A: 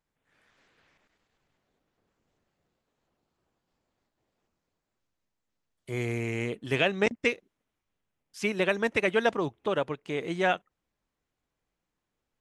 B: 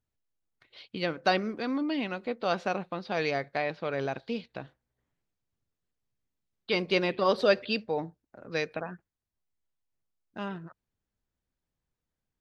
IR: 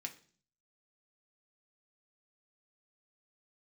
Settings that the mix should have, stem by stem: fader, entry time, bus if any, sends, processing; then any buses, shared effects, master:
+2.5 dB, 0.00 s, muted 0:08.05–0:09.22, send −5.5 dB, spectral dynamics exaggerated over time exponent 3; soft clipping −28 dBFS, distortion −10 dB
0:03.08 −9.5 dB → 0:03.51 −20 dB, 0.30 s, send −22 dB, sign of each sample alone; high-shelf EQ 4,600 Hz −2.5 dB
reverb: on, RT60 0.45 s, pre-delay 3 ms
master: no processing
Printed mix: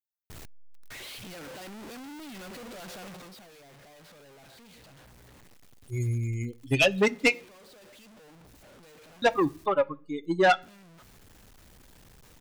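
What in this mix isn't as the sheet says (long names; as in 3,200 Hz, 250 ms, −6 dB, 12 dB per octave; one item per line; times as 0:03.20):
stem A +2.5 dB → +11.0 dB
stem B: missing high-shelf EQ 4,600 Hz −2.5 dB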